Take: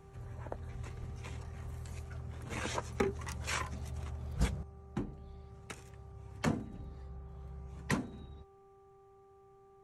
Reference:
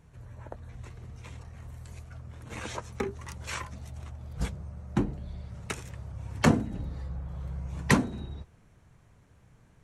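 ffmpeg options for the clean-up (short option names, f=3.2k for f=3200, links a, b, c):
-filter_complex "[0:a]bandreject=f=392.2:t=h:w=4,bandreject=f=784.4:t=h:w=4,bandreject=f=1.1766k:t=h:w=4,asplit=3[a][b][c];[a]afade=t=out:st=0.99:d=0.02[d];[b]highpass=f=140:w=0.5412,highpass=f=140:w=1.3066,afade=t=in:st=0.99:d=0.02,afade=t=out:st=1.11:d=0.02[e];[c]afade=t=in:st=1.11:d=0.02[f];[d][e][f]amix=inputs=3:normalize=0,asetnsamples=n=441:p=0,asendcmd='4.63 volume volume 11dB',volume=0dB"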